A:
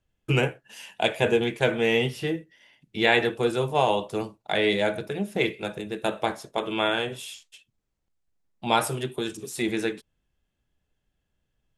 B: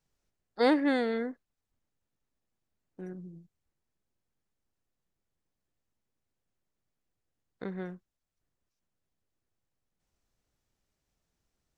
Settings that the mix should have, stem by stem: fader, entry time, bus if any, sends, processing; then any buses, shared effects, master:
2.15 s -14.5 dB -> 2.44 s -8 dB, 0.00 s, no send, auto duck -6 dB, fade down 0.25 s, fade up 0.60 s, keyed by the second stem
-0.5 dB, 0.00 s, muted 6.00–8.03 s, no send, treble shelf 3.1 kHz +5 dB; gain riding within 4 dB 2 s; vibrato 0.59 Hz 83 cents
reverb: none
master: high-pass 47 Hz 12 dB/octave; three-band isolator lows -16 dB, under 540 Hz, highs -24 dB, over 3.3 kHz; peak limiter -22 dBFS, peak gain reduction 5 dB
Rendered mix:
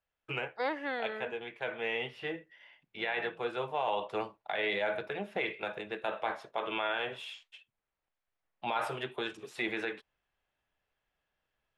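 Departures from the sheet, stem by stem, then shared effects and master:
stem A -14.5 dB -> -5.0 dB; master: missing high-pass 47 Hz 12 dB/octave

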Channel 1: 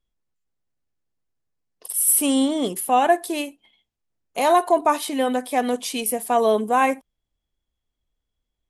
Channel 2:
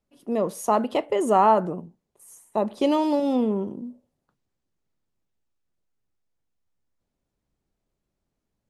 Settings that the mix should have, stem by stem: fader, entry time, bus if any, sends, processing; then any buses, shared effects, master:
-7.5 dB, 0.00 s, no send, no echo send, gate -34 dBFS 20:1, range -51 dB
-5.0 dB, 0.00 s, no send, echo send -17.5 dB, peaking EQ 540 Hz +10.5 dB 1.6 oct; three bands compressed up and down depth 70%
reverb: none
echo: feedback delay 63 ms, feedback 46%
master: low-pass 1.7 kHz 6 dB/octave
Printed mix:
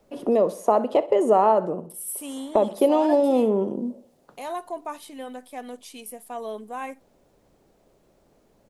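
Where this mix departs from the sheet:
stem 1 -7.5 dB -> -15.0 dB; master: missing low-pass 1.7 kHz 6 dB/octave

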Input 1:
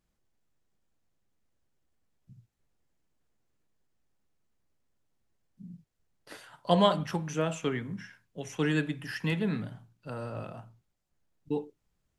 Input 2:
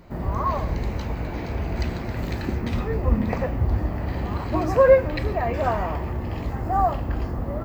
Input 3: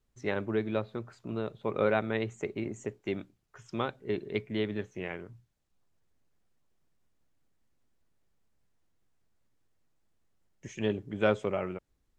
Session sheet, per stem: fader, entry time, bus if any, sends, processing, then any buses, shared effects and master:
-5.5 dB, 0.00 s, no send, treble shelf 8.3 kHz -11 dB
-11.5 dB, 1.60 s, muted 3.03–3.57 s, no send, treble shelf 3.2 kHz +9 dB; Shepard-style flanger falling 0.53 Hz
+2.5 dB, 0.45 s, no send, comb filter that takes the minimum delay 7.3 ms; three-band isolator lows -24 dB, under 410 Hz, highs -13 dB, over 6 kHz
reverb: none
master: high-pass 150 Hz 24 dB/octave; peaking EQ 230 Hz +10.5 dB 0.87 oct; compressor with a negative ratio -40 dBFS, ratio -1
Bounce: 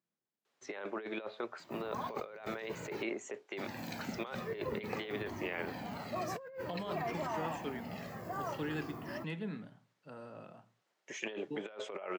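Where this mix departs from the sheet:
stem 1 -5.5 dB -> -14.5 dB; stem 3: missing comb filter that takes the minimum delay 7.3 ms; master: missing peaking EQ 230 Hz +10.5 dB 0.87 oct

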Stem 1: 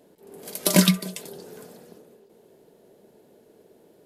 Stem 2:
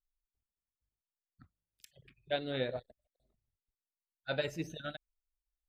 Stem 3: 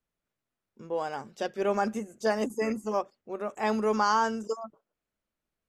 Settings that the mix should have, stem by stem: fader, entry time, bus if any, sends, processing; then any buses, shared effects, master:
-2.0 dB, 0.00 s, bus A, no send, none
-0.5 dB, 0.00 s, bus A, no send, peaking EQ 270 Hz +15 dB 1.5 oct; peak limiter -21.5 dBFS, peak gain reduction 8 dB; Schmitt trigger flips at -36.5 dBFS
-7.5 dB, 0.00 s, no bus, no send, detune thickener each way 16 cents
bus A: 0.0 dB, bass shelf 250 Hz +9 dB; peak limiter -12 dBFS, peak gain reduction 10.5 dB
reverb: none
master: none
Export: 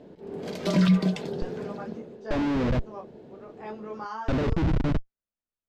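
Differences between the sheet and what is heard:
stem 1 -2.0 dB -> +6.0 dB; stem 2 -0.5 dB -> +10.5 dB; master: extra distance through air 180 m

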